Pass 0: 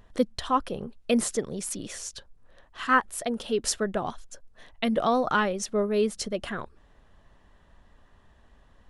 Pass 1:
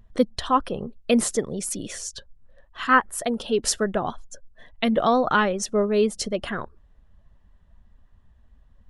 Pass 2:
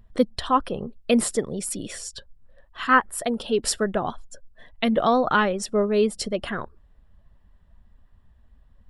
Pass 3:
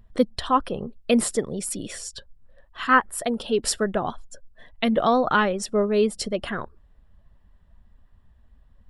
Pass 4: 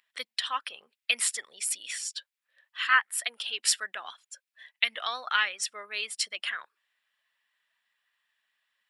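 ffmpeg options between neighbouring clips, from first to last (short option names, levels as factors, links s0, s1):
-af "afftdn=nr=14:nf=-51,volume=1.58"
-af "bandreject=f=6300:w=5.9"
-af anull
-af "highpass=f=2200:t=q:w=1.8"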